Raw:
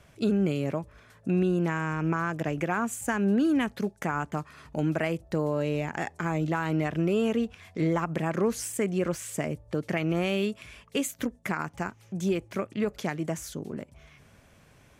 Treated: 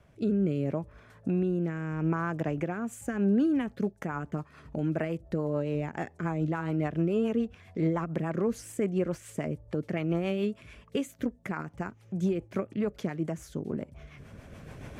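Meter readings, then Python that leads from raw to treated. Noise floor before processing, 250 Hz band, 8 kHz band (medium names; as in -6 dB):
-58 dBFS, -1.5 dB, -11.0 dB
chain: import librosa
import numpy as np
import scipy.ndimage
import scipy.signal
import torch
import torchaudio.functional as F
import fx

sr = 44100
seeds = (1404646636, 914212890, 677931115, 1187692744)

y = fx.recorder_agc(x, sr, target_db=-18.5, rise_db_per_s=11.0, max_gain_db=30)
y = fx.high_shelf(y, sr, hz=2100.0, db=-10.0)
y = fx.rotary_switch(y, sr, hz=0.75, then_hz=7.0, switch_at_s=2.58)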